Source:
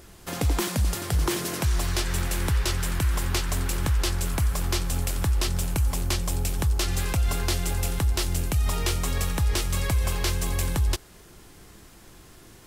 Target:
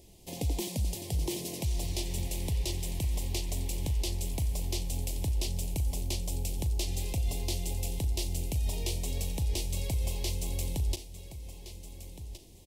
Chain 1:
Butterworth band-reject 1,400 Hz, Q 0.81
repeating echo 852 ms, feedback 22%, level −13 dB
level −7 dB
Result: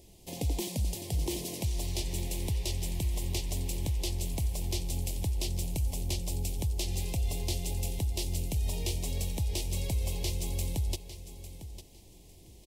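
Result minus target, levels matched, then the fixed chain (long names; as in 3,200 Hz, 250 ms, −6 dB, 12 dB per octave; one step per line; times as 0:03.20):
echo 565 ms early
Butterworth band-reject 1,400 Hz, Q 0.81
repeating echo 1,417 ms, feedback 22%, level −13 dB
level −7 dB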